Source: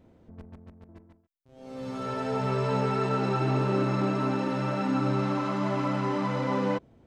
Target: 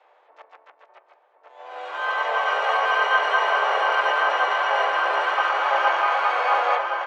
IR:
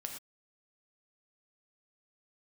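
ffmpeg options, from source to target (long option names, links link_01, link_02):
-filter_complex "[0:a]highpass=frequency=600:width_type=q:width=0.5412,highpass=frequency=600:width_type=q:width=1.307,lowpass=frequency=3400:width_type=q:width=0.5176,lowpass=frequency=3400:width_type=q:width=0.7071,lowpass=frequency=3400:width_type=q:width=1.932,afreqshift=230,asplit=2[link_01][link_02];[link_02]adelay=1062,lowpass=frequency=2100:poles=1,volume=-3dB,asplit=2[link_03][link_04];[link_04]adelay=1062,lowpass=frequency=2100:poles=1,volume=0.35,asplit=2[link_05][link_06];[link_06]adelay=1062,lowpass=frequency=2100:poles=1,volume=0.35,asplit=2[link_07][link_08];[link_08]adelay=1062,lowpass=frequency=2100:poles=1,volume=0.35,asplit=2[link_09][link_10];[link_10]adelay=1062,lowpass=frequency=2100:poles=1,volume=0.35[link_11];[link_01][link_03][link_05][link_07][link_09][link_11]amix=inputs=6:normalize=0,asplit=4[link_12][link_13][link_14][link_15];[link_13]asetrate=29433,aresample=44100,atempo=1.49831,volume=-3dB[link_16];[link_14]asetrate=35002,aresample=44100,atempo=1.25992,volume=-7dB[link_17];[link_15]asetrate=88200,aresample=44100,atempo=0.5,volume=-16dB[link_18];[link_12][link_16][link_17][link_18]amix=inputs=4:normalize=0,volume=9dB"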